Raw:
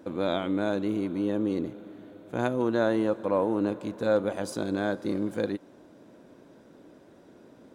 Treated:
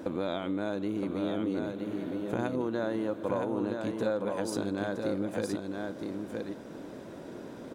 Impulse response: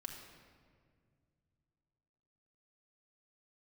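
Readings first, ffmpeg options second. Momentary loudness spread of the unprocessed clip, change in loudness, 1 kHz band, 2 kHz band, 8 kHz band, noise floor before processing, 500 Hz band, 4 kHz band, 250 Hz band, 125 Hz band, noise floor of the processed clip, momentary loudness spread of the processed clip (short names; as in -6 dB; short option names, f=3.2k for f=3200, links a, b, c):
9 LU, -4.5 dB, -4.0 dB, -4.0 dB, +0.5 dB, -55 dBFS, -4.0 dB, -3.0 dB, -3.0 dB, -2.5 dB, -44 dBFS, 12 LU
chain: -filter_complex "[0:a]acompressor=threshold=-40dB:ratio=4,asplit=2[a][b];[b]aecho=0:1:967:0.596[c];[a][c]amix=inputs=2:normalize=0,volume=8.5dB"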